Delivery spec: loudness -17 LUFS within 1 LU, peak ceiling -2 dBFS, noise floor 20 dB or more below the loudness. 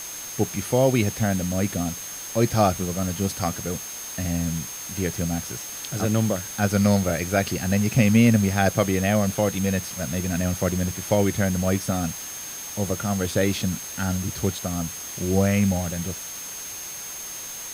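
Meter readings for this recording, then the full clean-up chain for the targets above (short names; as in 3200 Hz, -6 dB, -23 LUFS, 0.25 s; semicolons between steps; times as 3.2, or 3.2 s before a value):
steady tone 6400 Hz; tone level -35 dBFS; noise floor -35 dBFS; noise floor target -44 dBFS; loudness -24.0 LUFS; peak -6.0 dBFS; loudness target -17.0 LUFS
-> notch 6400 Hz, Q 30; noise print and reduce 9 dB; gain +7 dB; limiter -2 dBFS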